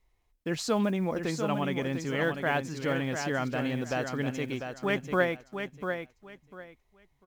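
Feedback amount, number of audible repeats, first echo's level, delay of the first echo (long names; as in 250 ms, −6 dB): 22%, 3, −7.0 dB, 697 ms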